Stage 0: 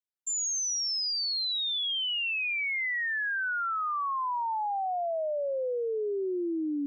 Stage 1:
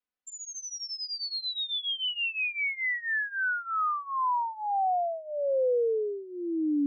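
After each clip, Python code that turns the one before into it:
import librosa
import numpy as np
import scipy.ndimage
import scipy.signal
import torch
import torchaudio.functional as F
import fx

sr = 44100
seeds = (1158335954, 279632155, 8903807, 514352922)

y = scipy.signal.sosfilt(scipy.signal.butter(2, 2900.0, 'lowpass', fs=sr, output='sos'), x)
y = y + 0.82 * np.pad(y, (int(4.0 * sr / 1000.0), 0))[:len(y)]
y = fx.rider(y, sr, range_db=3, speed_s=2.0)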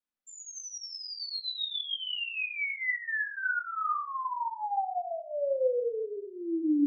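y = fx.room_shoebox(x, sr, seeds[0], volume_m3=540.0, walls='furnished', distance_m=2.4)
y = y * librosa.db_to_amplitude(-6.0)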